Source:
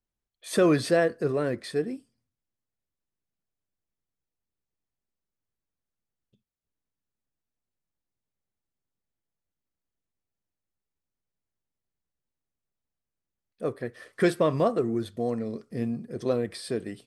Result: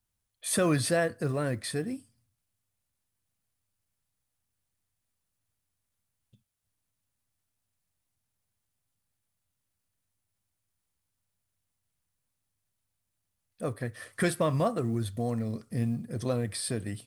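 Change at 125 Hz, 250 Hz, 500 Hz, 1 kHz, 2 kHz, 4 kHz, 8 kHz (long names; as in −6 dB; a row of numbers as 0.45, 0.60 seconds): +3.0, −3.0, −5.5, −2.5, −1.5, +0.5, +7.5 decibels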